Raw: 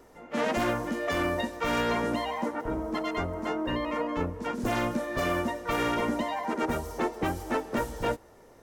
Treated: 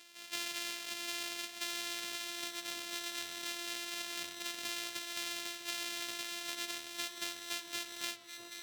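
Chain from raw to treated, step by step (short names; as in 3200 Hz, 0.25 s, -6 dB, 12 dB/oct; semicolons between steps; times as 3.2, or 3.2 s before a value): sample sorter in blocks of 128 samples; tilt +3 dB/oct; flange 0.41 Hz, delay 8.9 ms, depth 5.9 ms, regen -86%; weighting filter D; echo with dull and thin repeats by turns 0.647 s, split 1100 Hz, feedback 64%, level -13 dB; compressor 3:1, threshold -31 dBFS, peak gain reduction 11 dB; gain -5.5 dB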